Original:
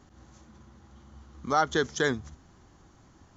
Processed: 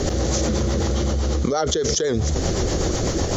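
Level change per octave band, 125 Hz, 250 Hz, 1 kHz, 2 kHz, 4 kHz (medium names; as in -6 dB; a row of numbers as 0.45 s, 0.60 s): +20.0 dB, +13.0 dB, +2.0 dB, -0.5 dB, +12.5 dB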